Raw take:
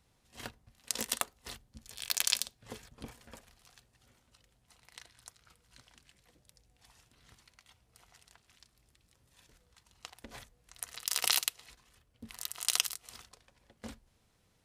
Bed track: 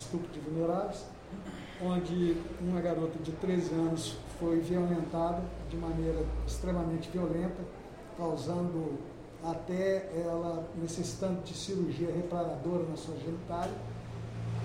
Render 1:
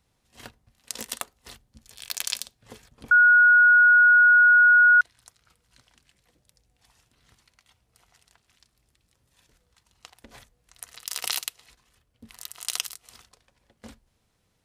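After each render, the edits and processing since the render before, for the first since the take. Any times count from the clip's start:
0:03.11–0:05.01: beep over 1,450 Hz −12 dBFS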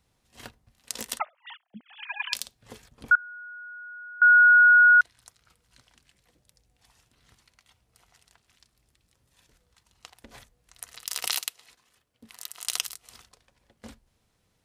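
0:01.19–0:02.33: three sine waves on the formant tracks
0:03.15–0:04.22: stiff-string resonator 280 Hz, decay 0.4 s, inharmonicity 0.008
0:11.27–0:12.67: high-pass filter 260 Hz 6 dB per octave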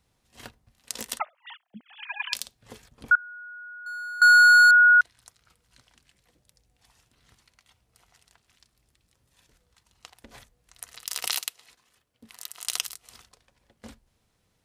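0:03.86–0:04.71: leveller curve on the samples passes 2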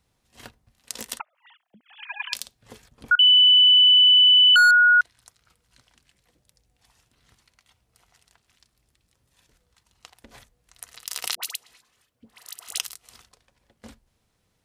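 0:01.21–0:01.89: downward compressor, threshold −51 dBFS
0:03.19–0:04.56: beep over 2,990 Hz −11 dBFS
0:11.35–0:12.79: all-pass dispersion highs, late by 75 ms, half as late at 990 Hz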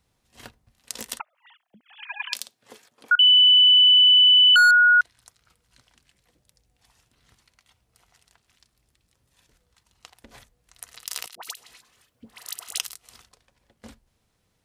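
0:02.13–0:03.13: high-pass filter 150 Hz → 460 Hz
0:11.20–0:12.64: compressor whose output falls as the input rises −36 dBFS, ratio −0.5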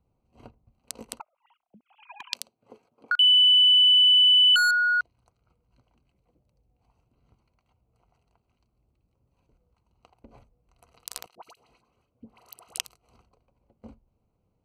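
adaptive Wiener filter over 25 samples
dynamic equaliser 1,500 Hz, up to −6 dB, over −31 dBFS, Q 1.2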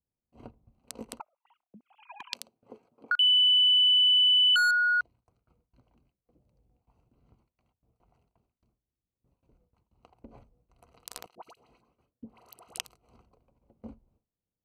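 drawn EQ curve 110 Hz 0 dB, 250 Hz +3 dB, 5,600 Hz −6 dB
noise gate with hold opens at −60 dBFS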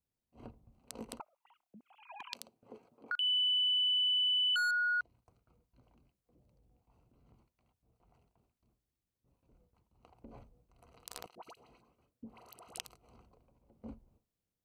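downward compressor 2.5 to 1, threshold −34 dBFS, peak gain reduction 9 dB
transient designer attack −5 dB, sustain +2 dB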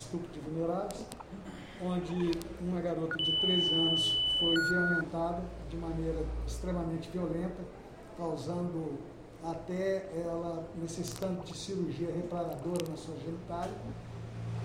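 mix in bed track −2 dB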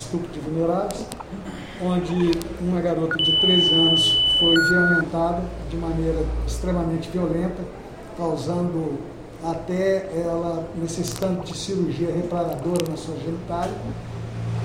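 level +11.5 dB

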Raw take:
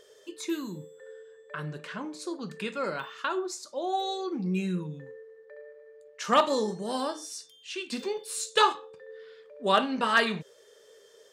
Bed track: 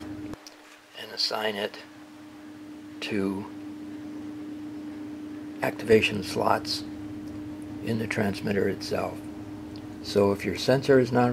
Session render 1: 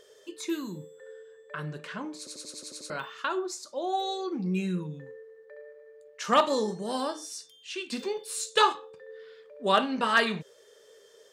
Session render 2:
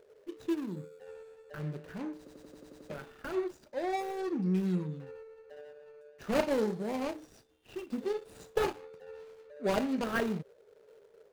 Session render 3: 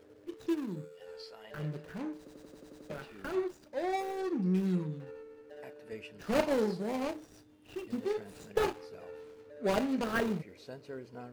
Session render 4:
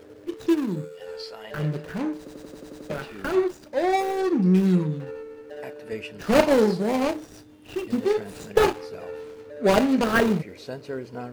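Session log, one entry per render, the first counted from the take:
0:02.18: stutter in place 0.09 s, 8 plays
running median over 41 samples
mix in bed track −24.5 dB
level +11 dB

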